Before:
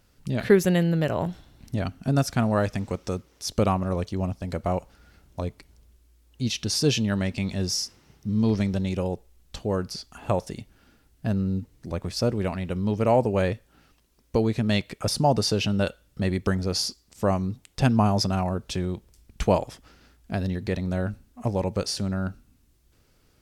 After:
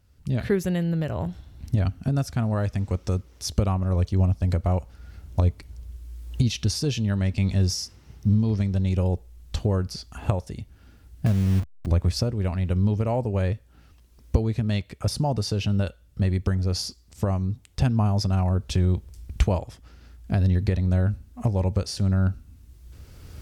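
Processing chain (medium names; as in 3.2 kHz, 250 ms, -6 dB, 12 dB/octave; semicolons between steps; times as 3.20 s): 11.26–11.87 s: send-on-delta sampling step -32 dBFS; recorder AGC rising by 13 dB/s; peaking EQ 72 Hz +15 dB 1.5 oct; trim -7 dB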